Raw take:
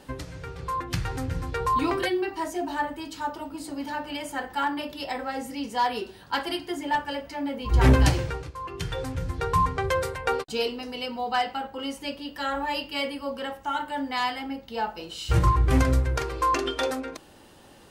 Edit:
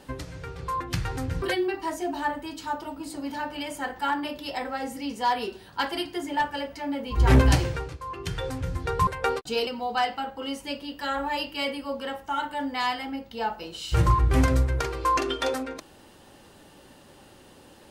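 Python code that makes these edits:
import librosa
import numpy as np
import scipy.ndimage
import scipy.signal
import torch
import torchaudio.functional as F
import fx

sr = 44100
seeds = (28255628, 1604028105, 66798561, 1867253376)

y = fx.edit(x, sr, fx.cut(start_s=1.42, length_s=0.54),
    fx.cut(start_s=9.61, length_s=0.49),
    fx.cut(start_s=10.7, length_s=0.34), tone=tone)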